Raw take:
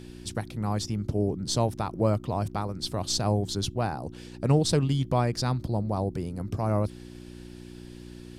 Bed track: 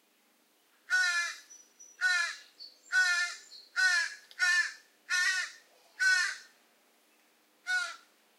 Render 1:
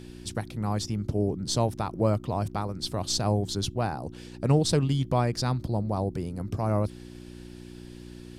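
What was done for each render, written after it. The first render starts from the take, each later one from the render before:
no processing that can be heard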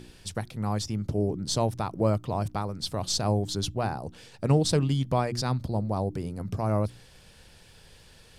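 hum removal 60 Hz, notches 6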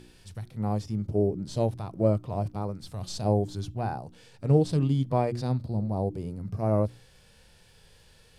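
harmonic and percussive parts rebalanced percussive −15 dB
dynamic equaliser 480 Hz, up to +5 dB, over −39 dBFS, Q 0.74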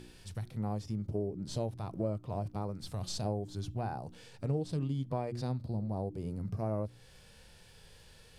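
downward compressor 3 to 1, threshold −34 dBFS, peak gain reduction 13.5 dB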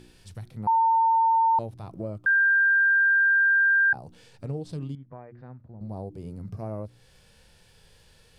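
0:00.67–0:01.59: beep over 905 Hz −17.5 dBFS
0:02.26–0:03.93: beep over 1,590 Hz −17 dBFS
0:04.95–0:05.81: transistor ladder low-pass 2,000 Hz, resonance 50%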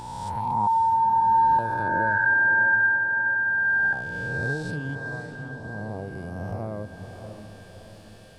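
peak hold with a rise ahead of every peak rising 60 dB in 2.15 s
feedback delay with all-pass diffusion 589 ms, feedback 52%, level −8 dB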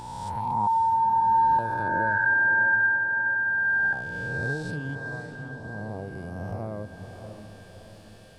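level −1.5 dB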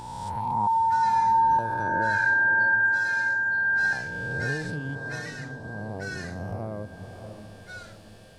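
mix in bed track −11 dB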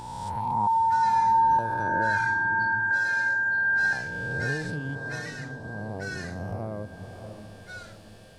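0:02.17–0:02.91: comb filter 0.9 ms, depth 79%

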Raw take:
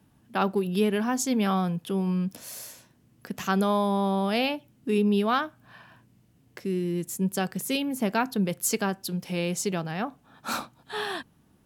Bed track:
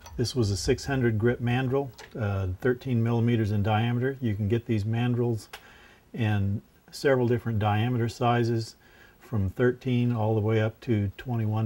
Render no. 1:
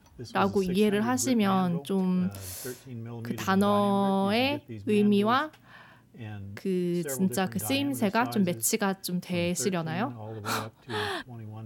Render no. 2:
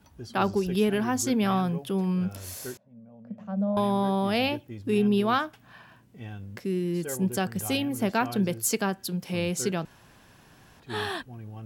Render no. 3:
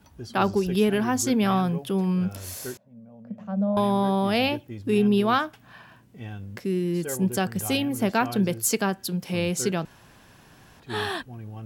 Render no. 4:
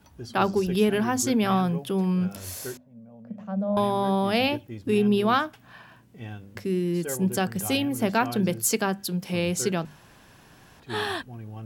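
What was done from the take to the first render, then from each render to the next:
mix in bed track −14 dB
0:02.77–0:03.77: pair of resonant band-passes 350 Hz, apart 1.5 octaves; 0:09.85–0:10.80: fill with room tone
level +2.5 dB
mains-hum notches 50/100/150/200/250 Hz

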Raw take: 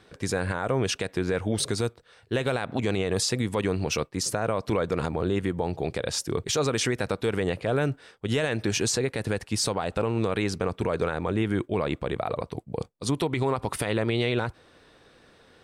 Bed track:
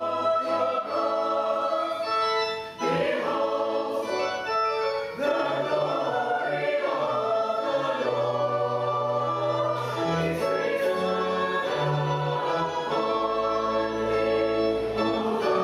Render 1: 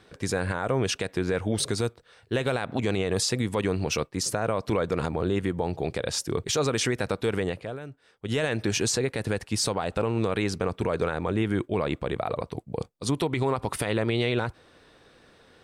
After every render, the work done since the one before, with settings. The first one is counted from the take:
0:07.37–0:08.43: duck −14.5 dB, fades 0.42 s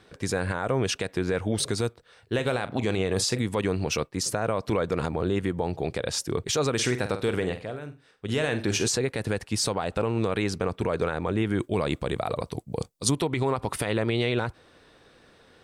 0:02.34–0:03.39: double-tracking delay 42 ms −13.5 dB
0:06.74–0:08.88: flutter between parallel walls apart 8.2 metres, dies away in 0.29 s
0:11.59–0:13.15: bass and treble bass +2 dB, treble +10 dB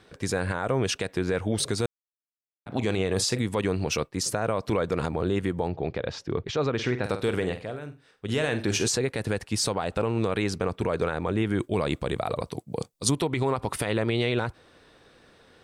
0:01.86–0:02.66: silence
0:05.68–0:07.04: high-frequency loss of the air 220 metres
0:12.50–0:12.93: high-pass filter 120 Hz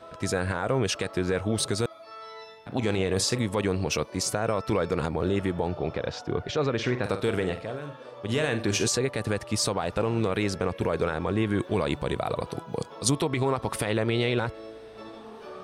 mix in bed track −18 dB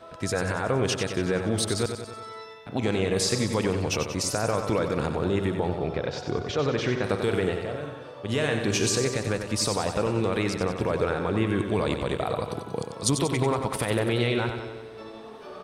repeating echo 93 ms, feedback 59%, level −7.5 dB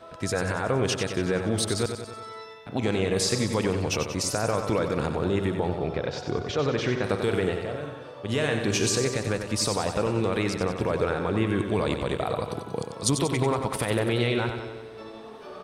no processing that can be heard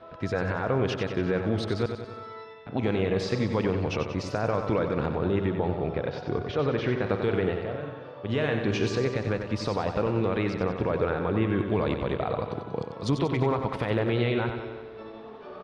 high-frequency loss of the air 250 metres
single-tap delay 342 ms −21.5 dB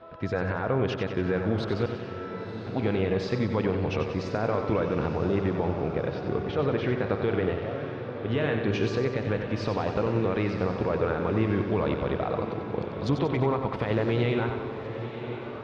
high-frequency loss of the air 100 metres
feedback delay with all-pass diffusion 1,023 ms, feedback 45%, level −10 dB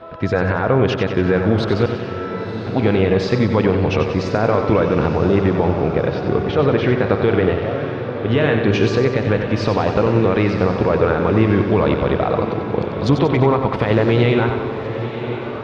level +10.5 dB

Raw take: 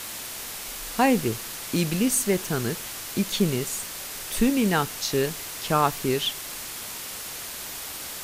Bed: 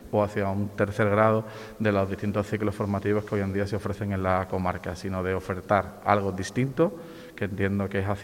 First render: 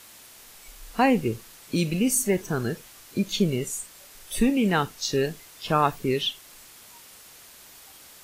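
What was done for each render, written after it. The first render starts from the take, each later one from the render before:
noise reduction from a noise print 13 dB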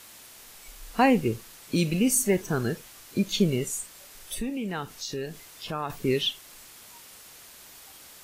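0:04.34–0:05.90: downward compressor 2 to 1, threshold −36 dBFS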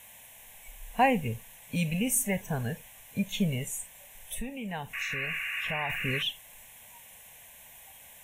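0:04.93–0:06.23: sound drawn into the spectrogram noise 1,100–2,900 Hz −32 dBFS
phaser with its sweep stopped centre 1,300 Hz, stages 6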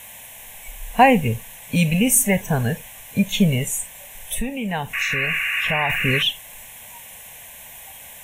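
level +11 dB
brickwall limiter −2 dBFS, peak gain reduction 1.5 dB

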